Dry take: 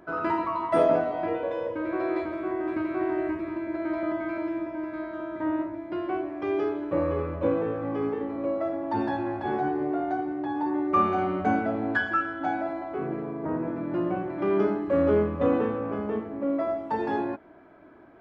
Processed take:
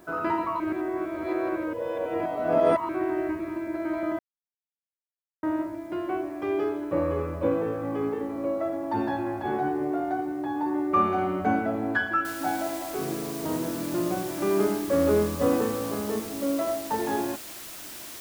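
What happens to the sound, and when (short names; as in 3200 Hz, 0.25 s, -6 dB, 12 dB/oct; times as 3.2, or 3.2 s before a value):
0.6–2.89 reverse
4.19–5.43 mute
12.25 noise floor step -64 dB -41 dB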